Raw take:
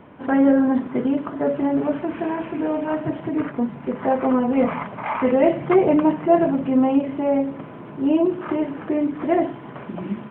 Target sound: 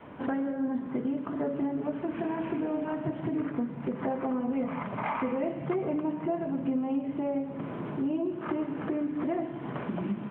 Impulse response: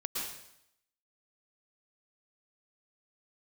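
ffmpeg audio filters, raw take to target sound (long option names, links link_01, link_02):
-filter_complex "[0:a]adynamicequalizer=threshold=0.0282:dfrequency=180:dqfactor=0.81:tfrequency=180:tqfactor=0.81:attack=5:release=100:ratio=0.375:range=2.5:mode=boostabove:tftype=bell,acompressor=threshold=-29dB:ratio=6,asplit=2[link_01][link_02];[1:a]atrim=start_sample=2205[link_03];[link_02][link_03]afir=irnorm=-1:irlink=0,volume=-10dB[link_04];[link_01][link_04]amix=inputs=2:normalize=0,volume=-2dB"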